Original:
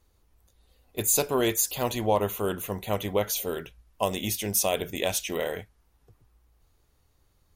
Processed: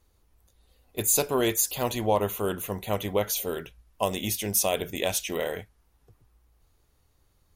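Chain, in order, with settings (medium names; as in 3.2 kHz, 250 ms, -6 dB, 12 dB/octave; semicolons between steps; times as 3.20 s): peaking EQ 11 kHz +2 dB 0.34 oct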